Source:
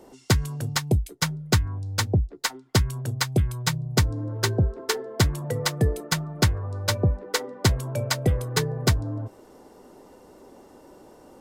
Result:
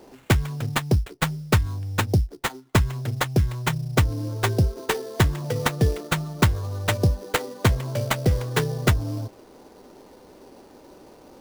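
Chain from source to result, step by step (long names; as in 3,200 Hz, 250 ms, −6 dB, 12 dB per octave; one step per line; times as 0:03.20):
pitch vibrato 4.5 Hz 7.8 cents
sample-rate reduction 5,300 Hz, jitter 20%
level +1.5 dB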